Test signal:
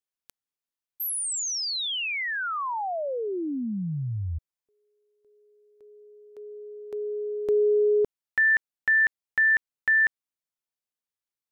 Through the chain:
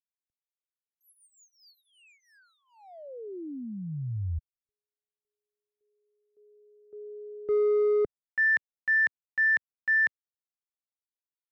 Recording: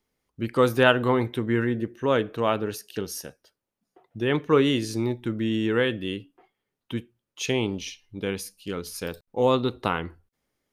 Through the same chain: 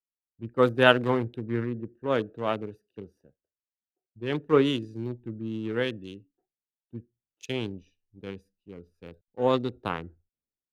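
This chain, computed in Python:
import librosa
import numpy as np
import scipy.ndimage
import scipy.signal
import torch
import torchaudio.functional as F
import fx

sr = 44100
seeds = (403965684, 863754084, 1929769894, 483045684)

y = fx.wiener(x, sr, points=41)
y = fx.band_widen(y, sr, depth_pct=70)
y = y * librosa.db_to_amplitude(-5.0)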